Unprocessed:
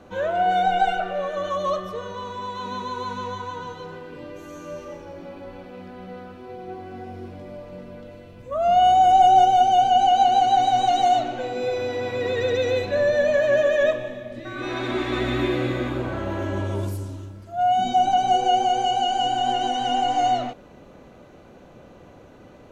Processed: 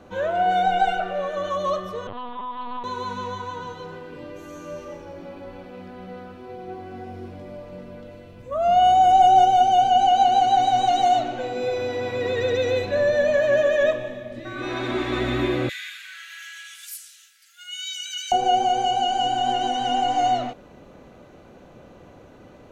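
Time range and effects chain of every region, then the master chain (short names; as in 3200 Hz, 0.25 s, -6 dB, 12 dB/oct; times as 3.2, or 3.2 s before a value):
2.07–2.84 HPF 150 Hz 24 dB/oct + LPC vocoder at 8 kHz pitch kept + Doppler distortion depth 0.19 ms
15.69–18.32 steep high-pass 1600 Hz 48 dB/oct + tilt +3 dB/oct
whole clip: dry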